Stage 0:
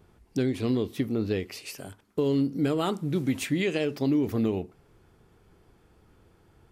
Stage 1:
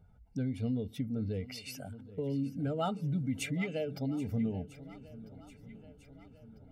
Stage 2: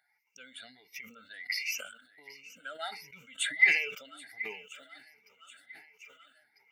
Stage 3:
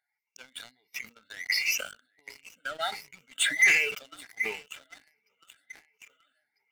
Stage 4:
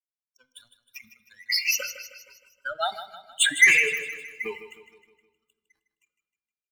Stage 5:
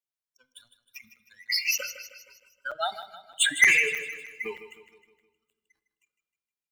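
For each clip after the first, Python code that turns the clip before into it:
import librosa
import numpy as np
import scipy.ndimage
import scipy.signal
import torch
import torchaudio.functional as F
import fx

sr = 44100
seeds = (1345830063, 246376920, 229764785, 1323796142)

y1 = fx.spec_expand(x, sr, power=1.5)
y1 = y1 + 0.98 * np.pad(y1, (int(1.4 * sr / 1000.0), 0))[:len(y1)]
y1 = fx.echo_swing(y1, sr, ms=1297, ratio=1.5, feedback_pct=48, wet_db=-18.0)
y1 = y1 * 10.0 ** (-6.5 / 20.0)
y2 = fx.spec_ripple(y1, sr, per_octave=0.79, drift_hz=1.4, depth_db=21)
y2 = fx.highpass_res(y2, sr, hz=1900.0, q=3.8)
y2 = fx.sustainer(y2, sr, db_per_s=87.0)
y3 = fx.leveller(y2, sr, passes=3)
y3 = y3 * 10.0 ** (-4.0 / 20.0)
y4 = fx.bin_expand(y3, sr, power=2.0)
y4 = fx.echo_feedback(y4, sr, ms=156, feedback_pct=49, wet_db=-12)
y4 = fx.room_shoebox(y4, sr, seeds[0], volume_m3=1400.0, walls='mixed', distance_m=0.31)
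y4 = y4 * 10.0 ** (7.0 / 20.0)
y5 = fx.buffer_crackle(y4, sr, first_s=0.54, period_s=0.31, block=256, kind='zero')
y5 = y5 * 10.0 ** (-2.0 / 20.0)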